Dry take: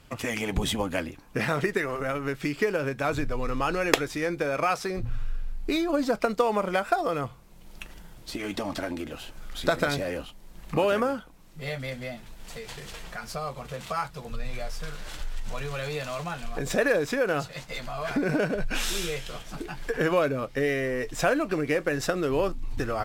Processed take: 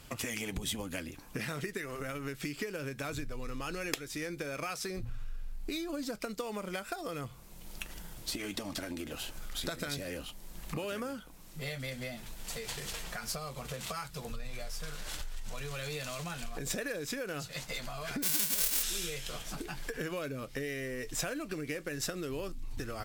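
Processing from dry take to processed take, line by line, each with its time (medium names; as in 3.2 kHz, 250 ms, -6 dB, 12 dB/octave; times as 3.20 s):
18.22–18.82 s: formants flattened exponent 0.1
whole clip: dynamic bell 820 Hz, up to -8 dB, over -39 dBFS, Q 0.85; compression 3:1, threshold -38 dBFS; treble shelf 4.7 kHz +9.5 dB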